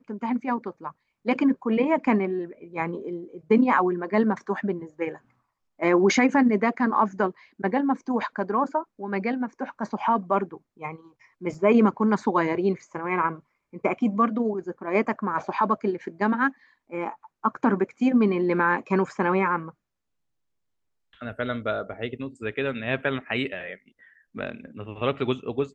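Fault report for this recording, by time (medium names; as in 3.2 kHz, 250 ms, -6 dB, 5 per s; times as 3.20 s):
11.54 s: dropout 3.2 ms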